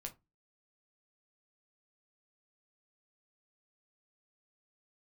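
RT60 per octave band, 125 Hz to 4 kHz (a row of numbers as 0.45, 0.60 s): 0.35, 0.35, 0.20, 0.20, 0.20, 0.15 s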